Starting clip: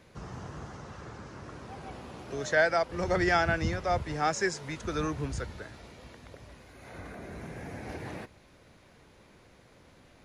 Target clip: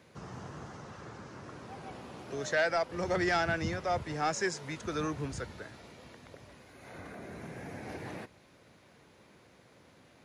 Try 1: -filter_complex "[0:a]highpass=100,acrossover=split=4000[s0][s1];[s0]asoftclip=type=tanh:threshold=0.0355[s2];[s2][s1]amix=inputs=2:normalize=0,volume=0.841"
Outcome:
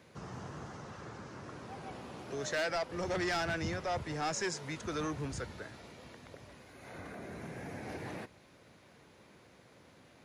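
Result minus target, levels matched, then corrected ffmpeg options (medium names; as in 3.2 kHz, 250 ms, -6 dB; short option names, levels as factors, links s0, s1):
saturation: distortion +9 dB
-filter_complex "[0:a]highpass=100,acrossover=split=4000[s0][s1];[s0]asoftclip=type=tanh:threshold=0.1[s2];[s2][s1]amix=inputs=2:normalize=0,volume=0.841"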